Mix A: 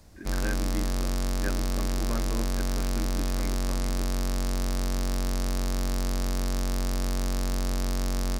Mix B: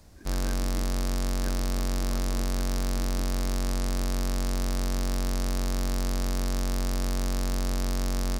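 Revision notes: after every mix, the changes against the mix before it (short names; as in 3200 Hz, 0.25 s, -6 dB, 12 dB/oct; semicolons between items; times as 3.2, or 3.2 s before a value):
speech -9.5 dB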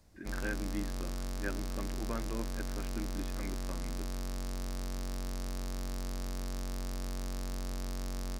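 speech +6.5 dB; background -10.0 dB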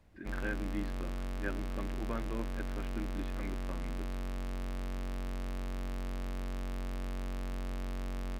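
background: add resonant high shelf 3800 Hz -9 dB, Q 1.5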